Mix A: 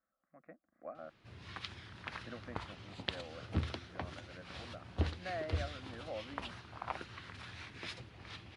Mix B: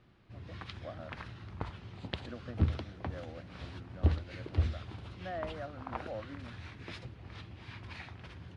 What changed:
background: entry -0.95 s; master: add tilt EQ -2 dB/octave

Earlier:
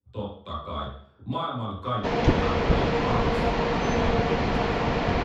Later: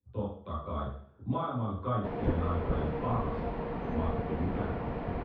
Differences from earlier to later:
background -8.5 dB; master: add tape spacing loss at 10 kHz 45 dB

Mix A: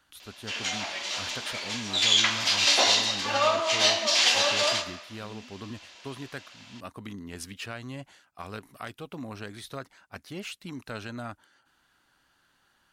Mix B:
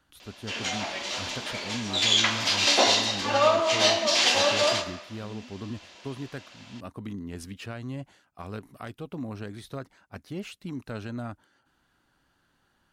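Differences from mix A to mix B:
background +4.0 dB; master: add tilt shelf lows +5 dB, about 680 Hz

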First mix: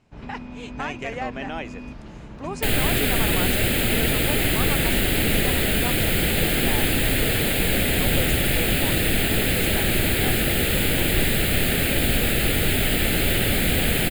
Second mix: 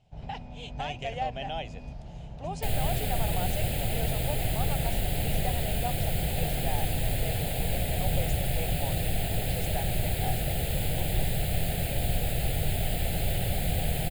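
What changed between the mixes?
speech: add peaking EQ 3.2 kHz +13 dB 0.58 oct; second sound -3.5 dB; master: add FFT filter 160 Hz 0 dB, 230 Hz -13 dB, 350 Hz -13 dB, 750 Hz +2 dB, 1.1 kHz -16 dB, 5 kHz -7 dB

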